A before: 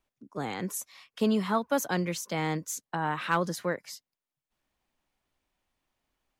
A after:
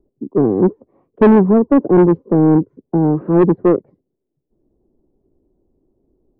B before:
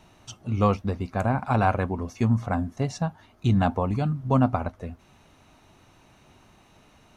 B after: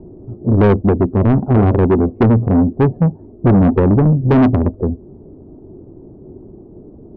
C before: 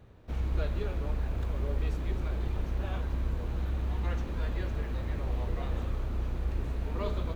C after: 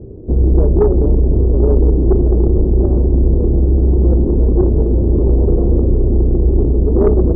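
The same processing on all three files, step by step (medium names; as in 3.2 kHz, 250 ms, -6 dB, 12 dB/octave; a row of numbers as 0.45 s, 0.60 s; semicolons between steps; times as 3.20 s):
four-pole ladder low-pass 430 Hz, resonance 60%; saturation -35 dBFS; normalise loudness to -14 LUFS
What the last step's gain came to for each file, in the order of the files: +30.0 dB, +27.5 dB, +31.5 dB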